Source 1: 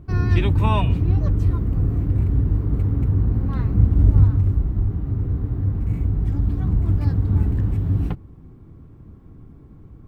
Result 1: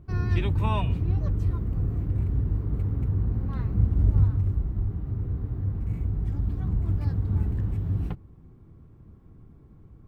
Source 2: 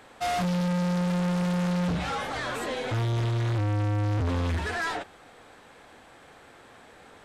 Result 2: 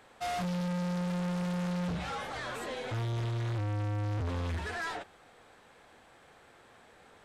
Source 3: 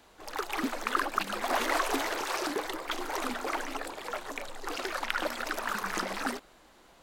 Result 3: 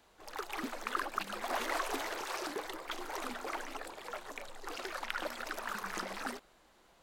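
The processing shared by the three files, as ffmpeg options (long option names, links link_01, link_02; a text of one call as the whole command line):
ffmpeg -i in.wav -af "equalizer=frequency=280:width_type=o:width=0.24:gain=-4.5,volume=-6.5dB" out.wav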